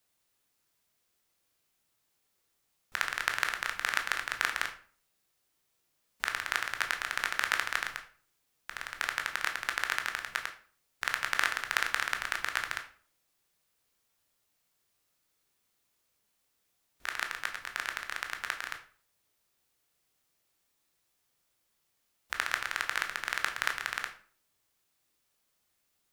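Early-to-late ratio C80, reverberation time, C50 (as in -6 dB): 15.5 dB, 0.45 s, 11.0 dB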